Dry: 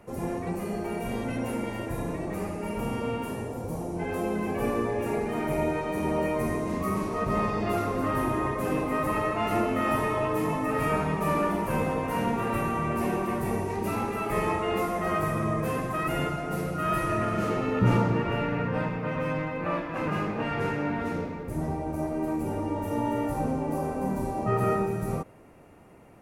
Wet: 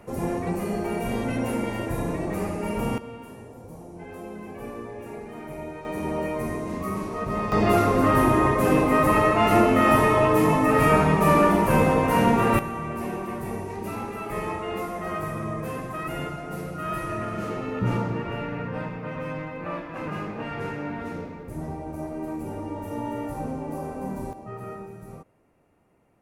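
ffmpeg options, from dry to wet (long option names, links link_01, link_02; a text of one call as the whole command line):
ffmpeg -i in.wav -af "asetnsamples=nb_out_samples=441:pad=0,asendcmd='2.98 volume volume -9dB;5.85 volume volume -1dB;7.52 volume volume 8dB;12.59 volume volume -3dB;24.33 volume volume -12dB',volume=4dB" out.wav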